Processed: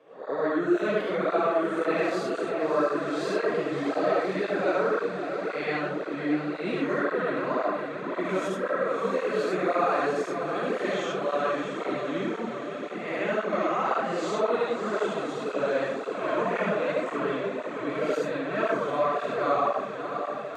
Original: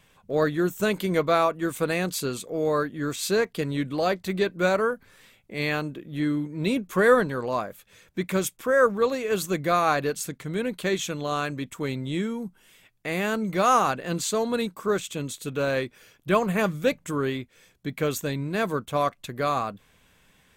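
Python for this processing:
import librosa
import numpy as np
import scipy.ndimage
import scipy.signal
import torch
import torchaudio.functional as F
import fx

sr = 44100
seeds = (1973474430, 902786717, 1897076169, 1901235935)

y = fx.spec_swells(x, sr, rise_s=0.64)
y = scipy.signal.sosfilt(scipy.signal.butter(2, 280.0, 'highpass', fs=sr, output='sos'), y)
y = fx.high_shelf(y, sr, hz=3500.0, db=-11.0)
y = fx.over_compress(y, sr, threshold_db=-23.0, ratio=-1.0)
y = fx.air_absorb(y, sr, metres=87.0)
y = fx.echo_diffused(y, sr, ms=623, feedback_pct=73, wet_db=-8.0)
y = fx.rev_freeverb(y, sr, rt60_s=0.73, hf_ratio=0.4, predelay_ms=30, drr_db=-3.5)
y = fx.flanger_cancel(y, sr, hz=1.9, depth_ms=5.5)
y = F.gain(torch.from_numpy(y), -3.5).numpy()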